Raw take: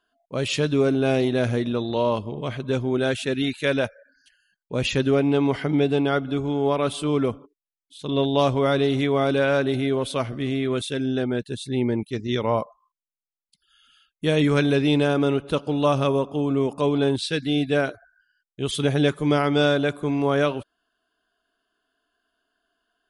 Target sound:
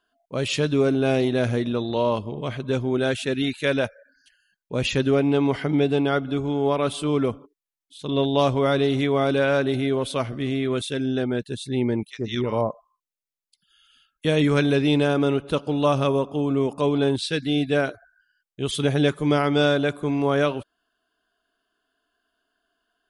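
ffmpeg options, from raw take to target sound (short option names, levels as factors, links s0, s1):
-filter_complex "[0:a]asettb=1/sr,asplit=3[s0][s1][s2];[s0]atrim=end=12.084[s3];[s1]atrim=start=12.08:end=14.25,asetpts=PTS-STARTPTS,afade=t=in:d=0.004:c=qsin,afade=t=out:st=2.166:d=0.004:c=qsin,acrossover=split=1200[s4][s5];[s4]adelay=80[s6];[s6][s5]amix=inputs=2:normalize=0,atrim=end_sample=95697[s7];[s2]atrim=start=14.246[s8];[s3][s7]acrossfade=d=0.004:c1=hsin:c2=qsin[s9];[s9][s8]acrossfade=d=0.004:c1=qsin:c2=hsin"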